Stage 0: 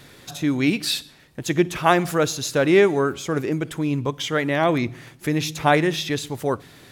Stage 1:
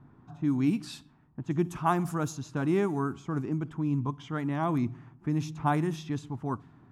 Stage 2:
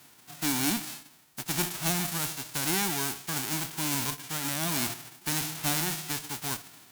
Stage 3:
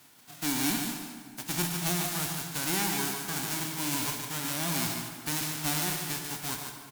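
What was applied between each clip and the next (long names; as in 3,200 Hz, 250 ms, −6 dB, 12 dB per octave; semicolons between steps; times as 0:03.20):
notch filter 550 Hz, Q 12; low-pass that shuts in the quiet parts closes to 1,200 Hz, open at −15.5 dBFS; octave-band graphic EQ 125/250/500/1,000/2,000/4,000 Hz +4/+6/−12/+7/−10/−11 dB; level −8 dB
spectral envelope flattened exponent 0.1; tube saturation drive 19 dB, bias 0.25; transient designer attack +1 dB, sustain +5 dB
single-tap delay 146 ms −6.5 dB; dense smooth reverb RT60 2.3 s, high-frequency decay 0.65×, DRR 5.5 dB; level −2.5 dB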